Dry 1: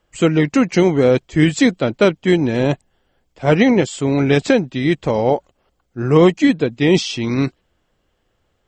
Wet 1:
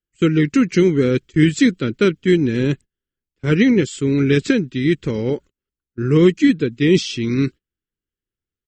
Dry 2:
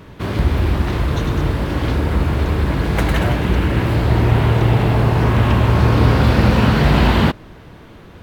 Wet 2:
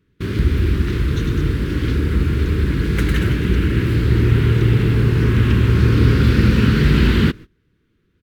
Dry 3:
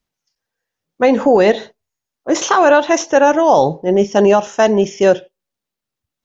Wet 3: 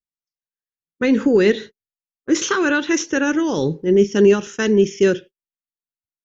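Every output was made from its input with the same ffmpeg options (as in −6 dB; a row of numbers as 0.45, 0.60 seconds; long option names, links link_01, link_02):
-af "agate=range=-23dB:threshold=-30dB:ratio=16:detection=peak,firequalizer=gain_entry='entry(410,0);entry(670,-24);entry(1400,-2)':delay=0.05:min_phase=1"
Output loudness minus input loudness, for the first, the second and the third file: −1.0, −0.5, −4.0 LU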